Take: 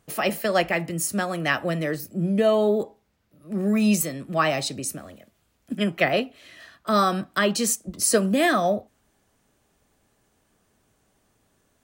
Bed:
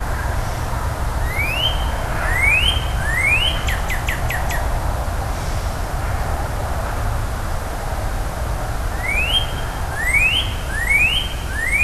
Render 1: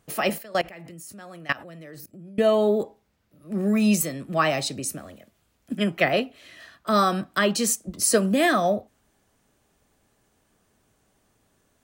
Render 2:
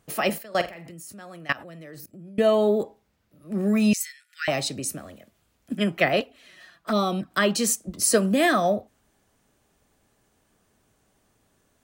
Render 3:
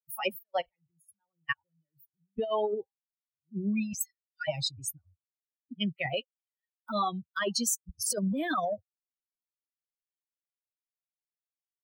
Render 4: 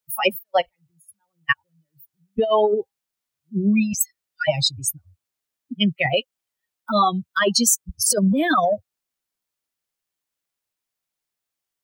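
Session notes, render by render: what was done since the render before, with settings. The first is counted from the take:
0:00.38–0:02.40: output level in coarse steps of 21 dB
0:00.48–0:00.91: flutter between parallel walls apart 7.8 metres, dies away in 0.25 s; 0:03.93–0:04.48: Chebyshev high-pass with heavy ripple 1,400 Hz, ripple 6 dB; 0:06.20–0:07.31: flanger swept by the level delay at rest 6.9 ms, full sweep at −19.5 dBFS
spectral dynamics exaggerated over time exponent 3; compressor whose output falls as the input rises −29 dBFS, ratio −1
level +11.5 dB

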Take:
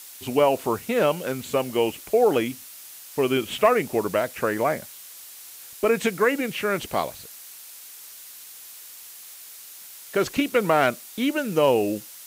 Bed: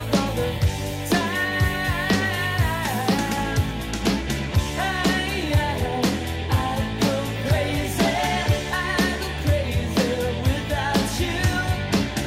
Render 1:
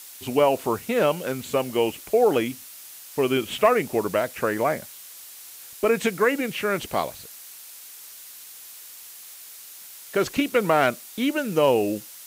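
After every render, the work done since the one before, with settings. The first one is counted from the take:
no processing that can be heard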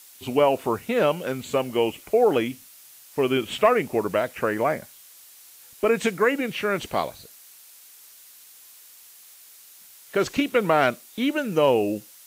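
noise reduction from a noise print 6 dB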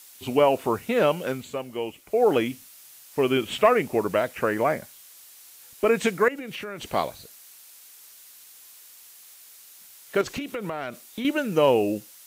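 0:01.30–0:02.28: duck −8 dB, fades 0.22 s
0:06.28–0:06.91: downward compressor 10 to 1, threshold −31 dBFS
0:10.21–0:11.25: downward compressor 10 to 1, threshold −27 dBFS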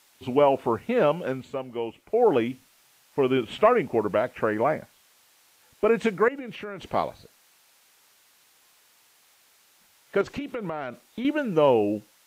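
low-pass filter 1,900 Hz 6 dB per octave
parametric band 860 Hz +2.5 dB 0.22 octaves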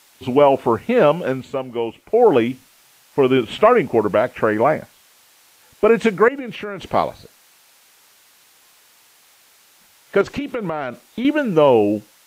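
level +7.5 dB
brickwall limiter −3 dBFS, peak gain reduction 2 dB

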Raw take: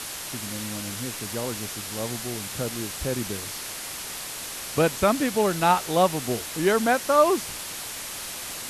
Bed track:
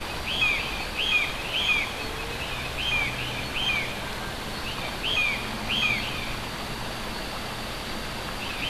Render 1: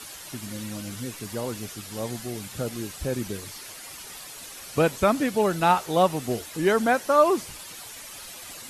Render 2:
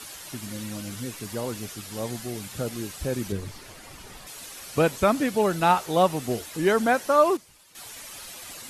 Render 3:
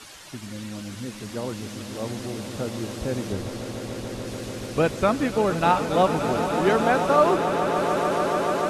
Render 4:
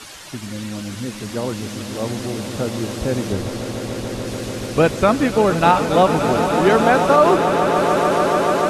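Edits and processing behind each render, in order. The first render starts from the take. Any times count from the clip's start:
broadband denoise 10 dB, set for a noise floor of −36 dBFS
0:03.32–0:04.27: spectral tilt −2.5 dB per octave; 0:07.04–0:08.08: duck −15 dB, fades 0.33 s logarithmic
high-frequency loss of the air 52 metres; echo that builds up and dies away 145 ms, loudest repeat 8, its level −11.5 dB
level +6.5 dB; brickwall limiter −3 dBFS, peak gain reduction 2.5 dB

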